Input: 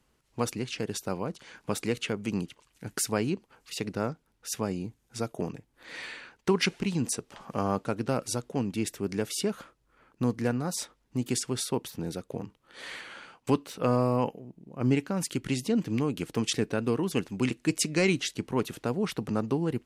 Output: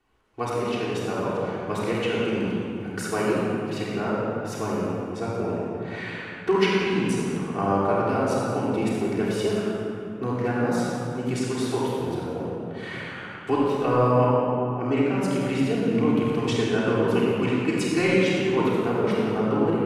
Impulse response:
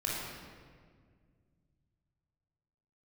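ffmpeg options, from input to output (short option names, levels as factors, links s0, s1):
-filter_complex "[0:a]bass=f=250:g=-8,treble=f=4000:g=-12[s0];[1:a]atrim=start_sample=2205,asetrate=27342,aresample=44100[s1];[s0][s1]afir=irnorm=-1:irlink=0,volume=0.891"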